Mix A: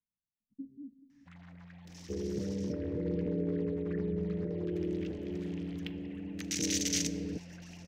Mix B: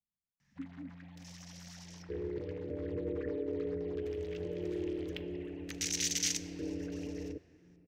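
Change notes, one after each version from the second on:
first sound: entry -0.70 s; second sound: add static phaser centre 460 Hz, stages 4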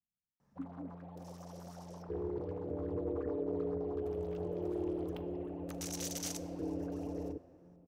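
first sound: remove FFT filter 160 Hz 0 dB, 410 Hz -18 dB, 1.2 kHz -6 dB, 1.9 kHz +13 dB, 6.6 kHz +9 dB, 10 kHz -2 dB

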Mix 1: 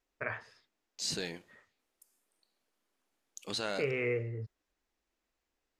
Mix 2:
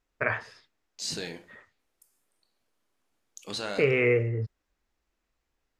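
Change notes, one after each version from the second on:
first voice +9.5 dB; second voice: send +11.0 dB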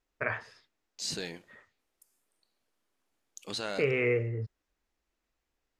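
first voice -4.5 dB; second voice: send -11.0 dB

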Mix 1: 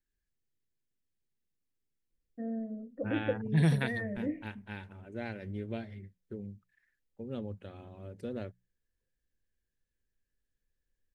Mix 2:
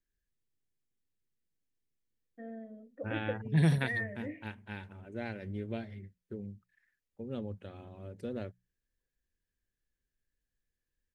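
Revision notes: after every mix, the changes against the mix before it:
first voice: add tilt EQ +4.5 dB/octave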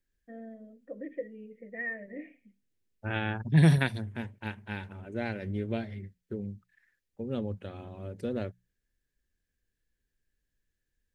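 first voice: entry -2.10 s; second voice +5.5 dB

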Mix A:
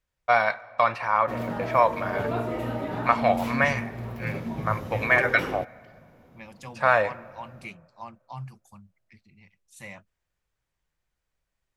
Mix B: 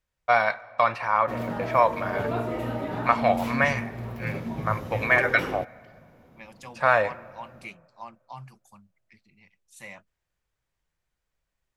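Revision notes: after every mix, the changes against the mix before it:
second voice: add high-pass 260 Hz 6 dB/octave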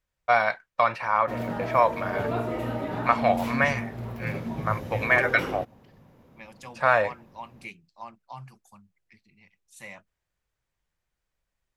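reverb: off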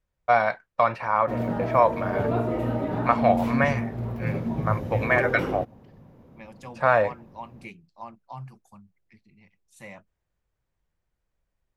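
master: add tilt shelf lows +5 dB, about 1.1 kHz

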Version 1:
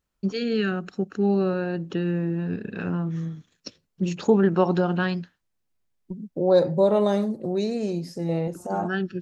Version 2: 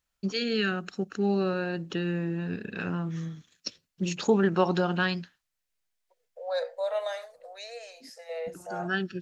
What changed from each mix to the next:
second voice: add rippled Chebyshev high-pass 470 Hz, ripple 9 dB; master: add tilt shelf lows -5 dB, about 1.3 kHz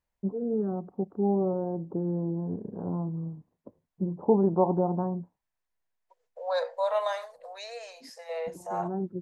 first voice: add steep low-pass 790 Hz 36 dB/octave; master: add peaking EQ 1 kHz +12.5 dB 0.54 oct

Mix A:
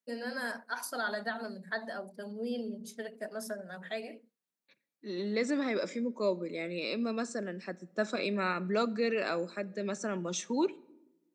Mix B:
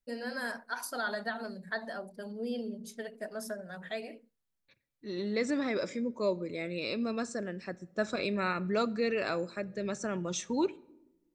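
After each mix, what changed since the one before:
master: remove steep high-pass 170 Hz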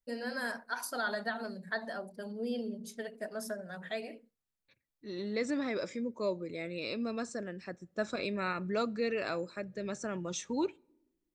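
second voice: send -11.5 dB

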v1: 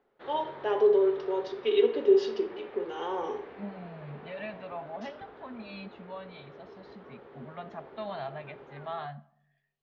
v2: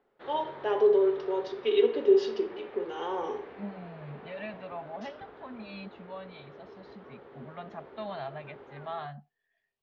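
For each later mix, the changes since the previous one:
second voice: send off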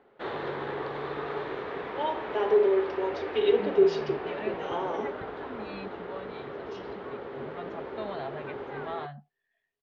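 first voice: entry +1.70 s; background +11.5 dB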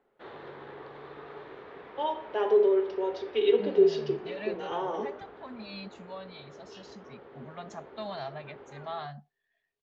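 second voice: remove low-pass 3.4 kHz 24 dB/octave; background -11.0 dB

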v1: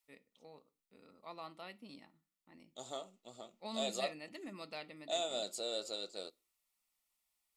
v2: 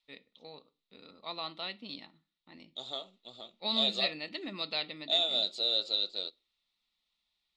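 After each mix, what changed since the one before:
first voice +6.0 dB; master: add resonant low-pass 3.8 kHz, resonance Q 5.6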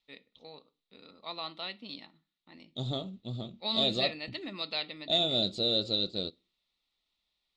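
second voice: remove high-pass 720 Hz 12 dB/octave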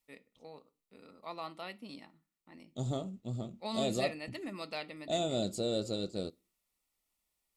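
master: remove resonant low-pass 3.8 kHz, resonance Q 5.6

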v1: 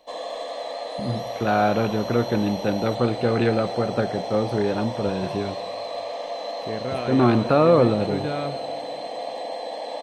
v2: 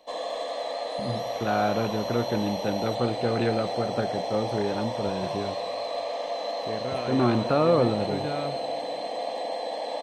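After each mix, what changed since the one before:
first voice -5.0 dB; second voice -4.0 dB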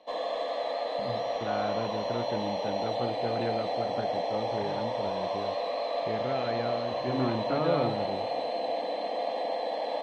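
first voice -8.0 dB; second voice: entry -0.60 s; master: add low-pass 3.8 kHz 12 dB/octave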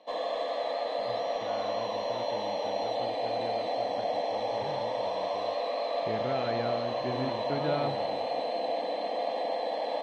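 first voice -10.5 dB

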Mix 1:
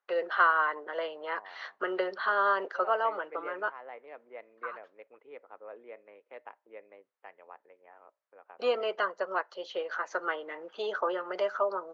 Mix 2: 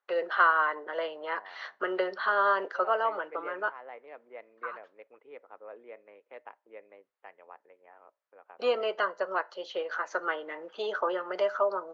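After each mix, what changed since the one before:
first voice: send +10.0 dB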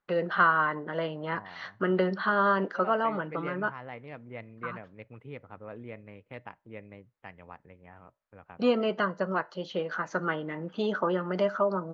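second voice: remove low-pass 1.2 kHz 6 dB/octave; master: remove high-pass 420 Hz 24 dB/octave

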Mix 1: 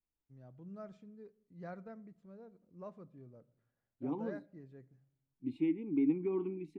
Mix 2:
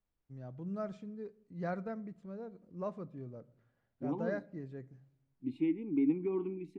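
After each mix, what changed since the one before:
first voice +9.0 dB; second voice: send on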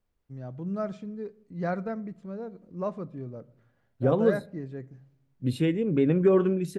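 first voice +7.5 dB; second voice: remove vowel filter u

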